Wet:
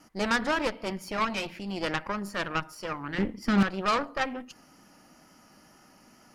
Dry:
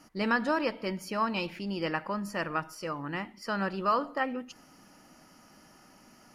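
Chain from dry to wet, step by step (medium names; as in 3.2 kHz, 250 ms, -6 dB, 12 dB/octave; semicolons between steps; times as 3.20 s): 3.18–3.63 s: resonant low shelf 390 Hz +9.5 dB, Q 3; Chebyshev shaper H 6 -13 dB, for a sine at -15.5 dBFS; wow and flutter 23 cents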